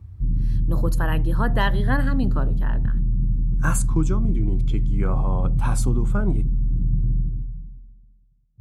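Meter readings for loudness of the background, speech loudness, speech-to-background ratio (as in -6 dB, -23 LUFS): -24.5 LUFS, -28.5 LUFS, -4.0 dB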